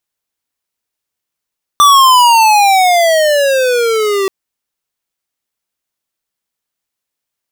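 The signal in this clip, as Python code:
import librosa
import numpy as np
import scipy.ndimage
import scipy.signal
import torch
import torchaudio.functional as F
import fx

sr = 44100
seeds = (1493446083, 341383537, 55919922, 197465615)

y = fx.riser_tone(sr, length_s=2.48, level_db=-5.0, wave='square', hz=1180.0, rise_st=-19.5, swell_db=-8.5)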